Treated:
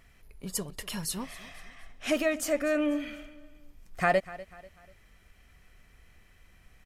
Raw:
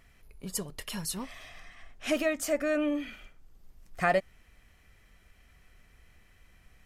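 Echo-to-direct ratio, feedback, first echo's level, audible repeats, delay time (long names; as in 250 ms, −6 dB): −17.5 dB, 40%, −18.0 dB, 3, 245 ms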